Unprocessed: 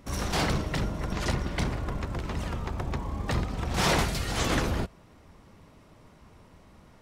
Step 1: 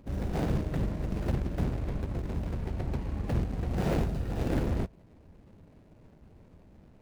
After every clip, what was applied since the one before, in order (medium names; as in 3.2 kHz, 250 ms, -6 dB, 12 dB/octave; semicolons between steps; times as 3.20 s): median filter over 41 samples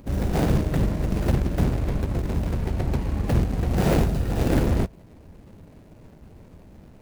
treble shelf 6.8 kHz +7.5 dB; trim +8 dB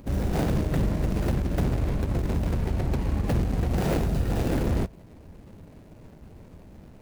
peak limiter -17 dBFS, peak gain reduction 8.5 dB